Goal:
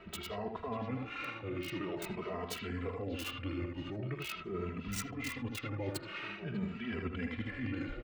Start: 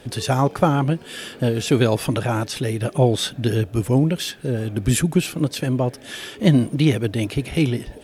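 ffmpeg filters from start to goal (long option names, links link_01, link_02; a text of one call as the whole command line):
ffmpeg -i in.wav -filter_complex "[0:a]equalizer=frequency=120:width=0.36:gain=-11,alimiter=limit=-16.5dB:level=0:latency=1:release=24,areverse,acompressor=threshold=-36dB:ratio=8,areverse,asetrate=35002,aresample=44100,atempo=1.25992,acrossover=split=3400[link_01][link_02];[link_01]aecho=1:1:48|78|595:0.141|0.596|0.282[link_03];[link_02]acrusher=bits=5:mix=0:aa=0.000001[link_04];[link_03][link_04]amix=inputs=2:normalize=0,asplit=2[link_05][link_06];[link_06]adelay=2.7,afreqshift=0.46[link_07];[link_05][link_07]amix=inputs=2:normalize=1,volume=2.5dB" out.wav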